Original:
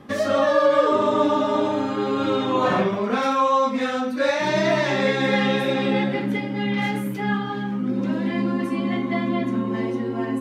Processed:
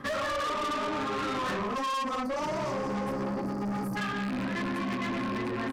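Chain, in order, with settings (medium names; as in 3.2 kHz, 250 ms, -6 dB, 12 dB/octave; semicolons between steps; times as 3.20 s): rattle on loud lows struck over -28 dBFS, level -23 dBFS; delay 319 ms -15 dB; granular stretch 0.55×, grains 119 ms; spectral selection erased 1.60–3.97 s, 1.3–4.4 kHz; peak limiter -17 dBFS, peak gain reduction 8.5 dB; high-order bell 1.4 kHz +8.5 dB 1.1 oct; saturation -29 dBFS, distortion -7 dB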